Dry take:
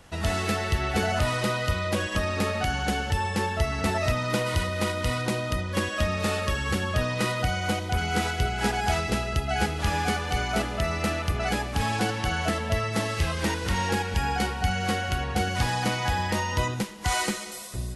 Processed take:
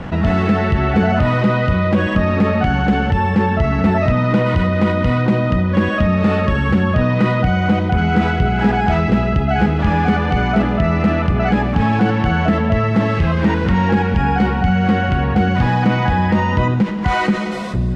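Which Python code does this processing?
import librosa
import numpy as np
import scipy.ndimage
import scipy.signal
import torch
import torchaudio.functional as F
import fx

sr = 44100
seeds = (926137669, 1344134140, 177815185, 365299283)

y = scipy.signal.sosfilt(scipy.signal.butter(2, 2100.0, 'lowpass', fs=sr, output='sos'), x)
y = fx.peak_eq(y, sr, hz=190.0, db=10.0, octaves=1.1)
y = fx.env_flatten(y, sr, amount_pct=50)
y = F.gain(torch.from_numpy(y), 4.5).numpy()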